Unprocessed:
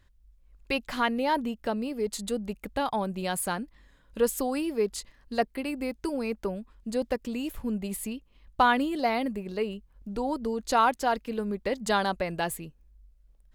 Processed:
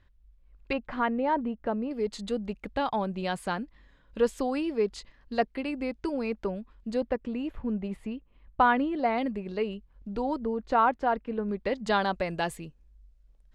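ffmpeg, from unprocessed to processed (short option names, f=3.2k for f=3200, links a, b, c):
-af "asetnsamples=n=441:p=0,asendcmd='0.73 lowpass f 1600;1.91 lowpass f 4300;7.01 lowpass f 2100;9.18 lowpass f 4100;10.39 lowpass f 1800;11.49 lowpass f 4100;12.16 lowpass f 6800',lowpass=3.7k"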